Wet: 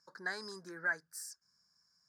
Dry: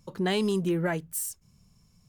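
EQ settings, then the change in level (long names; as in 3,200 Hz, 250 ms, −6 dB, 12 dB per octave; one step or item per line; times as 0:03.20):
pair of resonant band-passes 2,800 Hz, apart 1.6 octaves
parametric band 3,100 Hz −14 dB 0.73 octaves
+7.0 dB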